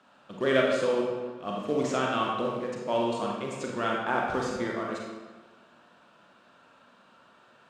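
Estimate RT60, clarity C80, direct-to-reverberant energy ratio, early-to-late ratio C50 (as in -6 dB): 1.4 s, 2.5 dB, -2.0 dB, 0.0 dB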